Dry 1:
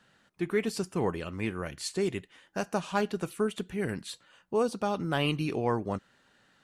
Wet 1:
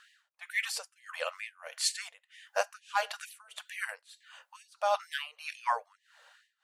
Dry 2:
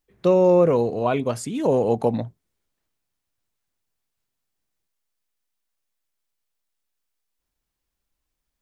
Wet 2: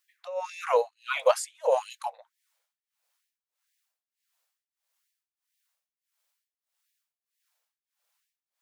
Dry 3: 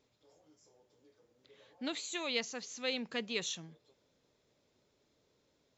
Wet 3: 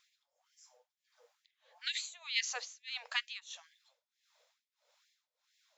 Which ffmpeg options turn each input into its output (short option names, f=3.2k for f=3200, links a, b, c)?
-af "tremolo=f=1.6:d=0.95,afftfilt=real='re*gte(b*sr/1024,450*pow(1700/450,0.5+0.5*sin(2*PI*2.2*pts/sr)))':imag='im*gte(b*sr/1024,450*pow(1700/450,0.5+0.5*sin(2*PI*2.2*pts/sr)))':win_size=1024:overlap=0.75,volume=7dB"